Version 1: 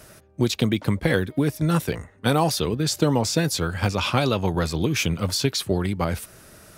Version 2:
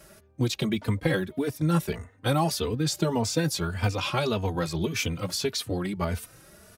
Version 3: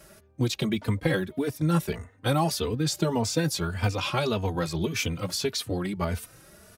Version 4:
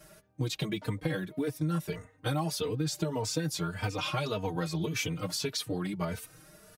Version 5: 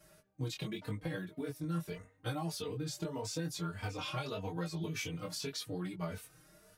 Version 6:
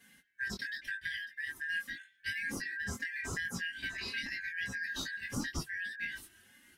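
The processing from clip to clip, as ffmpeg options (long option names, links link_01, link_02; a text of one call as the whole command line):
ffmpeg -i in.wav -filter_complex "[0:a]asplit=2[link_01][link_02];[link_02]adelay=3.2,afreqshift=1.7[link_03];[link_01][link_03]amix=inputs=2:normalize=1,volume=-1.5dB" out.wav
ffmpeg -i in.wav -af anull out.wav
ffmpeg -i in.wav -af "aecho=1:1:6.5:0.76,acompressor=threshold=-22dB:ratio=6,volume=-5dB" out.wav
ffmpeg -i in.wav -af "flanger=delay=17:depth=7:speed=0.85,volume=-4dB" out.wav
ffmpeg -i in.wav -af "afftfilt=real='real(if(lt(b,272),68*(eq(floor(b/68),0)*3+eq(floor(b/68),1)*0+eq(floor(b/68),2)*1+eq(floor(b/68),3)*2)+mod(b,68),b),0)':imag='imag(if(lt(b,272),68*(eq(floor(b/68),0)*3+eq(floor(b/68),1)*0+eq(floor(b/68),2)*1+eq(floor(b/68),3)*2)+mod(b,68),b),0)':win_size=2048:overlap=0.75,lowshelf=frequency=390:width_type=q:width=1.5:gain=10" out.wav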